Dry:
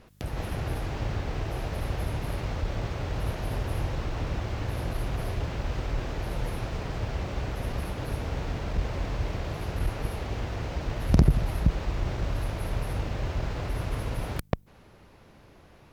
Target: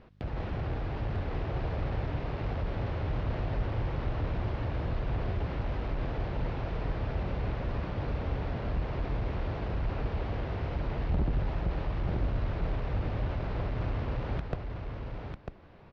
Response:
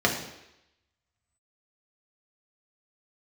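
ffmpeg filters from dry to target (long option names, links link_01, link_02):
-filter_complex "[0:a]lowpass=frequency=5100:width=0.5412,lowpass=frequency=5100:width=1.3066,aemphasis=mode=reproduction:type=75fm,asoftclip=type=tanh:threshold=-23dB,asplit=2[link_01][link_02];[link_02]aecho=0:1:947:0.562[link_03];[link_01][link_03]amix=inputs=2:normalize=0,volume=-1.5dB"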